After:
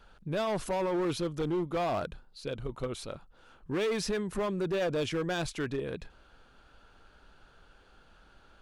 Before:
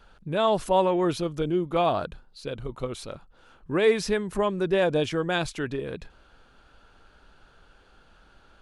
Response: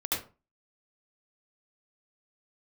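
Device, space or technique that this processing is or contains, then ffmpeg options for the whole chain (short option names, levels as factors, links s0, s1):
limiter into clipper: -af "alimiter=limit=0.126:level=0:latency=1:release=23,asoftclip=type=hard:threshold=0.0631,volume=0.75"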